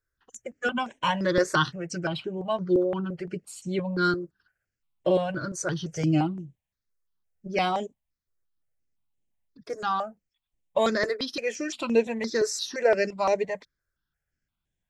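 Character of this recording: notches that jump at a steady rate 5.8 Hz 820–4700 Hz

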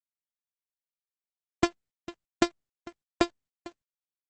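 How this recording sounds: a buzz of ramps at a fixed pitch in blocks of 128 samples; random-step tremolo; a quantiser's noise floor 10-bit, dither none; Opus

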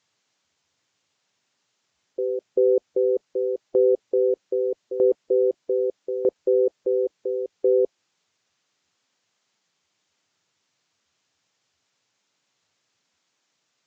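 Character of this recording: tremolo saw down 0.8 Hz, depth 75%; a quantiser's noise floor 12-bit, dither triangular; Vorbis

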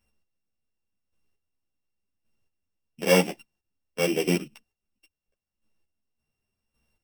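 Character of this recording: a buzz of ramps at a fixed pitch in blocks of 16 samples; chopped level 0.89 Hz, depth 65%, duty 20%; a shimmering, thickened sound

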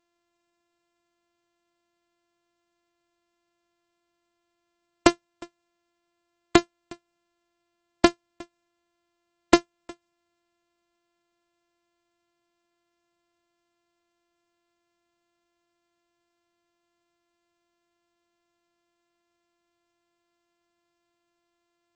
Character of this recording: a buzz of ramps at a fixed pitch in blocks of 128 samples; MP3

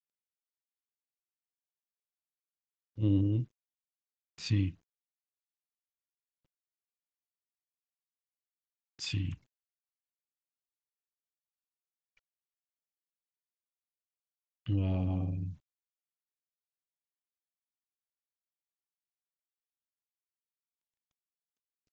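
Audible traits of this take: phasing stages 2, 0.41 Hz, lowest notch 540–1500 Hz; a quantiser's noise floor 12-bit, dither none; SBC

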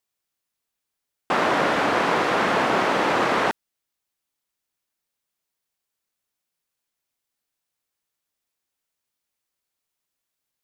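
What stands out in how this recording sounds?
noise floor -83 dBFS; spectral tilt -2.0 dB/oct

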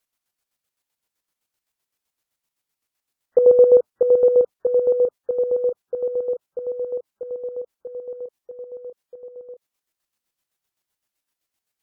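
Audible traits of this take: chopped level 7.8 Hz, depth 60%, duty 40%; WMA

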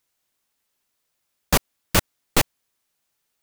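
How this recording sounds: noise floor -76 dBFS; spectral tilt -3.0 dB/oct

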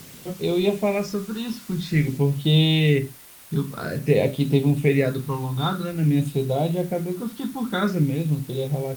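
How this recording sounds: phasing stages 6, 0.5 Hz, lowest notch 570–1700 Hz; a quantiser's noise floor 8-bit, dither triangular; Opus

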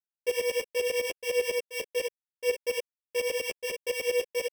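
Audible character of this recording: a buzz of ramps at a fixed pitch in blocks of 16 samples; tremolo saw up 10 Hz, depth 95%; a quantiser's noise floor 12-bit, dither none; a shimmering, thickened sound

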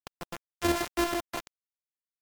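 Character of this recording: a buzz of ramps at a fixed pitch in blocks of 128 samples; chopped level 6.2 Hz, depth 65%, duty 45%; a quantiser's noise floor 6-bit, dither none; MP3

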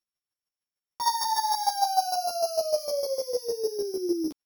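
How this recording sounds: a buzz of ramps at a fixed pitch in blocks of 8 samples; chopped level 6.6 Hz, depth 60%, duty 15%; a shimmering, thickened sound

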